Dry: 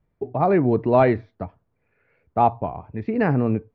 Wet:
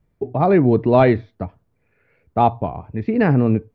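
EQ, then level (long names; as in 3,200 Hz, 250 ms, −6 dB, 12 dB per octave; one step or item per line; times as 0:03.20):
parametric band 960 Hz −4 dB 2.2 octaves
dynamic equaliser 3,500 Hz, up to +7 dB, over −59 dBFS, Q 5
+5.5 dB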